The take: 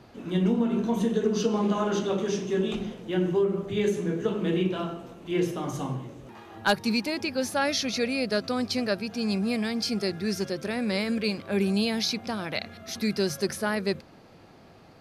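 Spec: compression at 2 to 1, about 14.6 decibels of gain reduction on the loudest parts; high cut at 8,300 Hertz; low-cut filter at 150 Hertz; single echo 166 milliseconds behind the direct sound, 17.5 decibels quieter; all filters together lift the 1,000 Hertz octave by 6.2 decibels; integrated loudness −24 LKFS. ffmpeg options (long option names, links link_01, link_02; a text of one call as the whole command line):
ffmpeg -i in.wav -af "highpass=150,lowpass=8300,equalizer=frequency=1000:width_type=o:gain=8,acompressor=threshold=-42dB:ratio=2,aecho=1:1:166:0.133,volume=13.5dB" out.wav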